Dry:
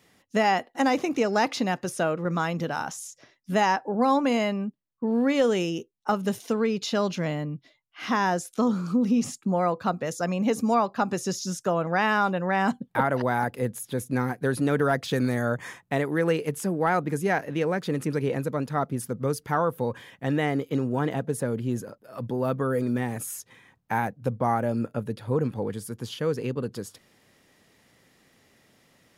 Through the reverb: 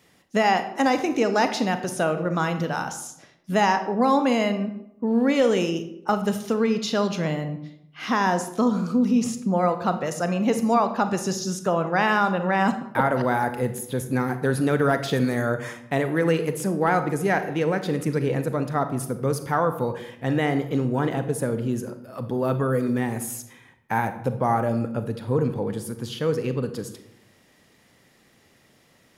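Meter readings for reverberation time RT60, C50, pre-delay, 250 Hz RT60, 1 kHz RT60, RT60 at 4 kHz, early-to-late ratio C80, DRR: 0.75 s, 11.0 dB, 32 ms, 0.95 s, 0.70 s, 0.50 s, 13.5 dB, 9.0 dB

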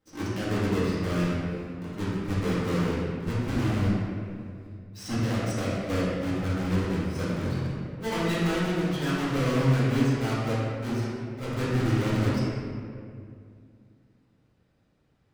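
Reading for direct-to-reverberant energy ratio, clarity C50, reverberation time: -11.0 dB, -3.0 dB, 2.3 s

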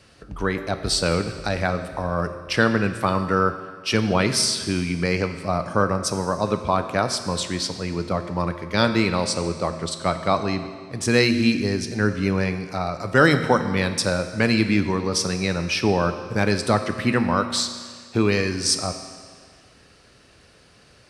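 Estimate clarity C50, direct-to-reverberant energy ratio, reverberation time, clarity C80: 9.5 dB, 8.0 dB, 1.8 s, 11.0 dB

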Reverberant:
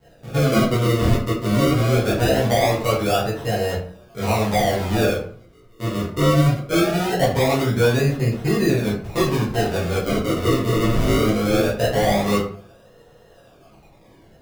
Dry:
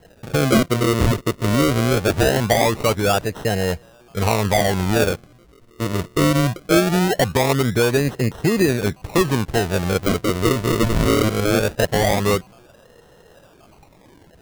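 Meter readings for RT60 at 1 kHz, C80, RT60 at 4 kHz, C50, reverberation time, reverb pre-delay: 0.45 s, 9.0 dB, 0.30 s, 5.0 dB, 0.50 s, 7 ms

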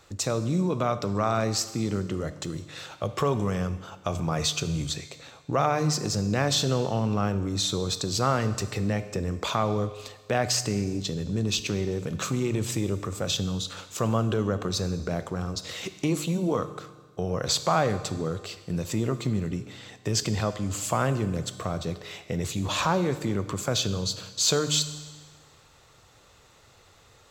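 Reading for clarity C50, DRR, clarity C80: 12.5 dB, 11.0 dB, 14.0 dB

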